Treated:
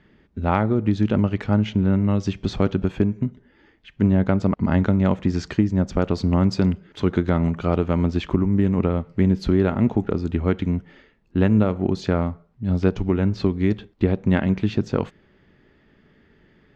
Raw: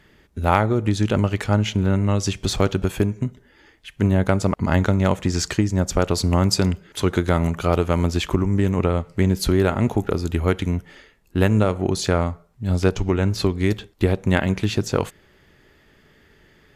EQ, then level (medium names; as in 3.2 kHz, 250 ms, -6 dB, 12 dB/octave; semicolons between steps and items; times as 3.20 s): distance through air 180 m; peaking EQ 220 Hz +7 dB 1.2 oct; -3.5 dB